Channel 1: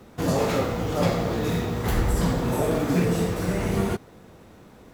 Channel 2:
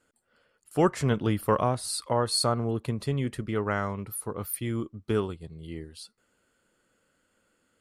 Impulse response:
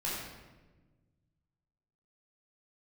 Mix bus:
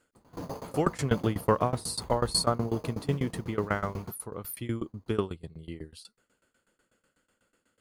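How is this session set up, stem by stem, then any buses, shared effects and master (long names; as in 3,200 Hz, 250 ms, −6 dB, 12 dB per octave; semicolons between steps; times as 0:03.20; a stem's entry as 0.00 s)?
−7.5 dB, 0.15 s, no send, parametric band 1,000 Hz +10.5 dB 0.63 octaves; decimation without filtering 8×; tilt shelving filter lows +3.5 dB, about 700 Hz; automatic ducking −9 dB, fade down 0.65 s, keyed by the second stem
+2.5 dB, 0.00 s, no send, no processing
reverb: not used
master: shaped tremolo saw down 8.1 Hz, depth 95%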